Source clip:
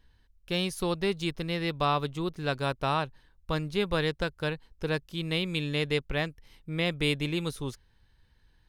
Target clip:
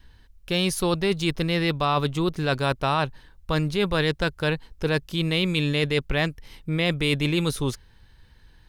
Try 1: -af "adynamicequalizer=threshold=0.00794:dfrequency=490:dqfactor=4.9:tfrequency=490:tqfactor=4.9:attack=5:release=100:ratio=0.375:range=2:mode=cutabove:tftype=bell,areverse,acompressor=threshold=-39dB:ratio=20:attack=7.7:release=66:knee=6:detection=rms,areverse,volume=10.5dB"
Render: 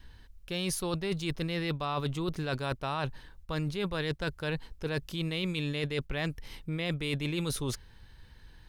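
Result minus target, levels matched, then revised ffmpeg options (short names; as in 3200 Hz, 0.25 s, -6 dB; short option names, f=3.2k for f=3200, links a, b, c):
compressor: peak gain reduction +10.5 dB
-af "adynamicequalizer=threshold=0.00794:dfrequency=490:dqfactor=4.9:tfrequency=490:tqfactor=4.9:attack=5:release=100:ratio=0.375:range=2:mode=cutabove:tftype=bell,areverse,acompressor=threshold=-28dB:ratio=20:attack=7.7:release=66:knee=6:detection=rms,areverse,volume=10.5dB"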